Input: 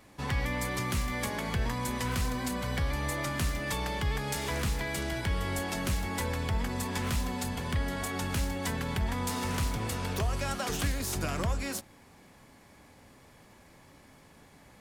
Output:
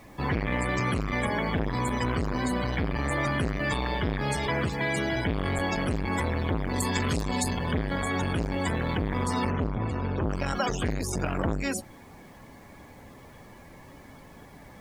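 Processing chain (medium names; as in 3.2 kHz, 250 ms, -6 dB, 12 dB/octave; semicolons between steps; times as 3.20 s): 4.47–5.15 s: high-pass 92 Hz 24 dB/octave; 6.74–7.54 s: treble shelf 2.5 kHz +7.5 dB; loudest bins only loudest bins 64; added noise pink -66 dBFS; 9.50–10.29 s: tape spacing loss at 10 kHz 24 dB; transformer saturation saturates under 430 Hz; trim +8 dB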